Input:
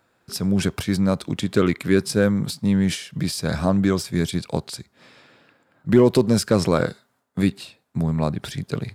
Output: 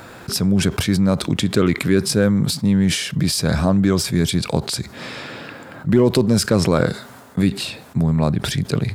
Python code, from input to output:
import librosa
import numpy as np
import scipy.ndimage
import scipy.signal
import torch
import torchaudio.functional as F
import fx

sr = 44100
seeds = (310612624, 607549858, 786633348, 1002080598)

y = fx.low_shelf(x, sr, hz=220.0, db=3.5)
y = fx.env_flatten(y, sr, amount_pct=50)
y = y * 10.0 ** (-2.0 / 20.0)